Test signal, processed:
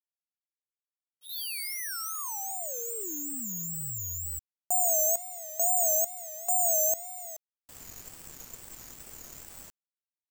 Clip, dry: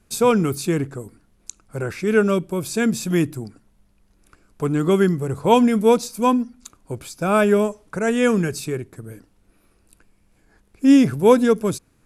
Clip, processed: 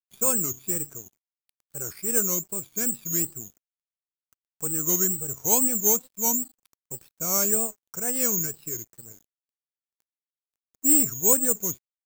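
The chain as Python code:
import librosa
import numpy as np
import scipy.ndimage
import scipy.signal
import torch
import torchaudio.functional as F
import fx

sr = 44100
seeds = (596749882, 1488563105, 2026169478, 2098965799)

y = (np.kron(scipy.signal.resample_poly(x, 1, 6), np.eye(6)[0]) * 6)[:len(x)]
y = fx.wow_flutter(y, sr, seeds[0], rate_hz=2.1, depth_cents=140.0)
y = np.sign(y) * np.maximum(np.abs(y) - 10.0 ** (-32.0 / 20.0), 0.0)
y = F.gain(torch.from_numpy(y), -14.0).numpy()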